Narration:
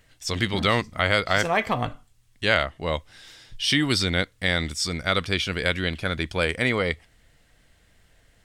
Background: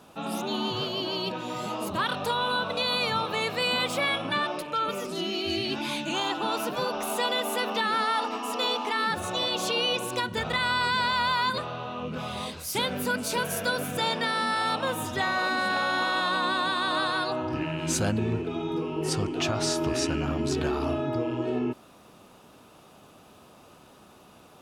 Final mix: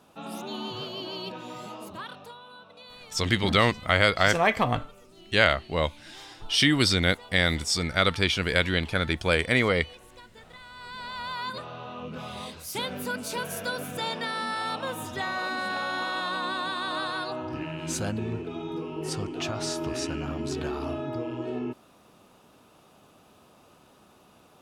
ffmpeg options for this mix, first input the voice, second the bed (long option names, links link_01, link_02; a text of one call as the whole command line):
ffmpeg -i stem1.wav -i stem2.wav -filter_complex "[0:a]adelay=2900,volume=0.5dB[link_01];[1:a]volume=11.5dB,afade=type=out:start_time=1.45:duration=0.96:silence=0.16788,afade=type=in:start_time=10.73:duration=1.17:silence=0.141254[link_02];[link_01][link_02]amix=inputs=2:normalize=0" out.wav